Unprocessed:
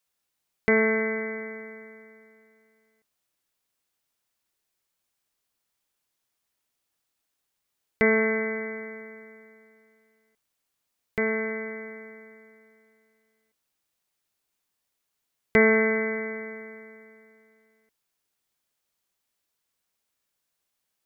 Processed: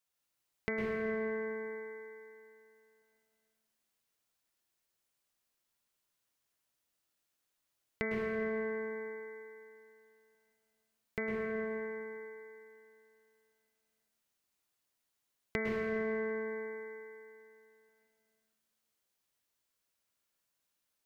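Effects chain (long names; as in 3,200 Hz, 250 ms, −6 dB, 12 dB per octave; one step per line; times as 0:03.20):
downward compressor, threshold −27 dBFS, peak gain reduction 12 dB
dense smooth reverb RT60 1.7 s, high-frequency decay 0.9×, pre-delay 95 ms, DRR −1 dB
level −6.5 dB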